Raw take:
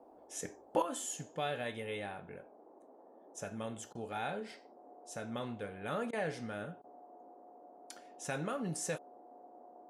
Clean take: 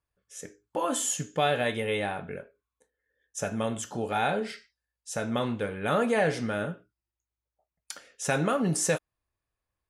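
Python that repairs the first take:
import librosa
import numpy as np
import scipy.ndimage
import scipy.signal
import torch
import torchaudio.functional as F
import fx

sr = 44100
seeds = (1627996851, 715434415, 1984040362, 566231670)

y = fx.notch(x, sr, hz=720.0, q=30.0)
y = fx.fix_interpolate(y, sr, at_s=(3.93, 6.11, 6.82), length_ms=19.0)
y = fx.noise_reduce(y, sr, print_start_s=2.49, print_end_s=2.99, reduce_db=30.0)
y = fx.gain(y, sr, db=fx.steps((0.0, 0.0), (0.82, 11.5)))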